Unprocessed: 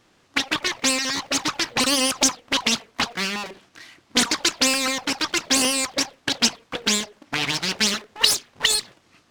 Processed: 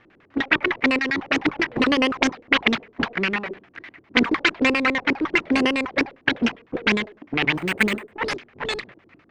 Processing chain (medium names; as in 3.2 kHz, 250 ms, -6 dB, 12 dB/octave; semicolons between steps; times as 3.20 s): LFO low-pass square 9.9 Hz 370–2100 Hz; 7.55–8.12 s: decimation joined by straight lines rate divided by 4×; trim +2.5 dB